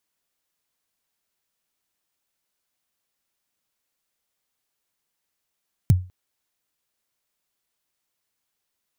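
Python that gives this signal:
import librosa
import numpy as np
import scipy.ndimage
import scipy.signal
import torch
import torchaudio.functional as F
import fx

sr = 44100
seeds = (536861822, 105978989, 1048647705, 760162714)

y = fx.drum_kick(sr, seeds[0], length_s=0.2, level_db=-8.0, start_hz=160.0, end_hz=91.0, sweep_ms=21.0, decay_s=0.31, click=True)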